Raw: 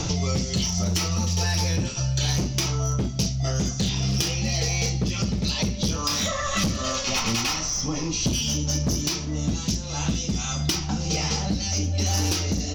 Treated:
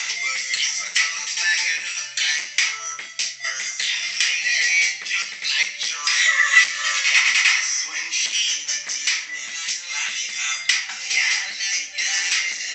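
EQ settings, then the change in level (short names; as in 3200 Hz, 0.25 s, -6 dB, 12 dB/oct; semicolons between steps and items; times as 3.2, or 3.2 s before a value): resonant high-pass 2000 Hz, resonance Q 6.8; synth low-pass 7700 Hz, resonance Q 14; air absorption 160 m; +6.0 dB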